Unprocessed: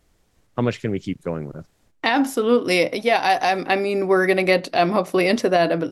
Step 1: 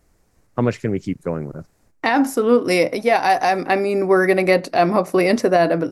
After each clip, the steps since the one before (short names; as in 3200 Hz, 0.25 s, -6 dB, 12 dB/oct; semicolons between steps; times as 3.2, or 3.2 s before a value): bell 3300 Hz -10 dB 0.67 oct; gain +2.5 dB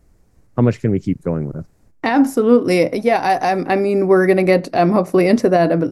low shelf 410 Hz +9.5 dB; gain -2 dB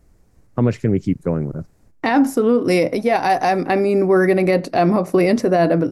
limiter -7 dBFS, peak gain reduction 6 dB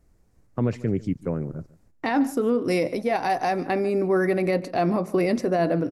echo 0.147 s -20 dB; gain -7 dB